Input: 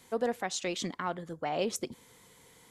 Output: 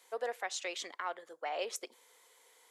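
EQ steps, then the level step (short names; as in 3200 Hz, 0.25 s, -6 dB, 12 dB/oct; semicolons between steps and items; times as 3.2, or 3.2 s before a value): HPF 450 Hz 24 dB/oct; dynamic EQ 2000 Hz, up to +4 dB, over -49 dBFS, Q 1.3; -4.5 dB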